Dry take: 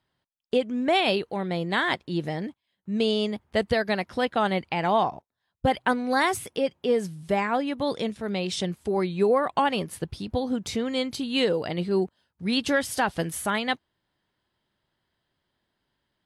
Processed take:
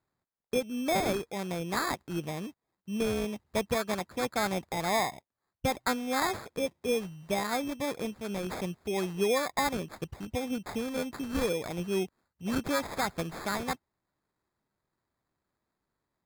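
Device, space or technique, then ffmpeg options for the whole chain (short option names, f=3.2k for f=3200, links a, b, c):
crushed at another speed: -af "asetrate=35280,aresample=44100,acrusher=samples=19:mix=1:aa=0.000001,asetrate=55125,aresample=44100,volume=-6dB"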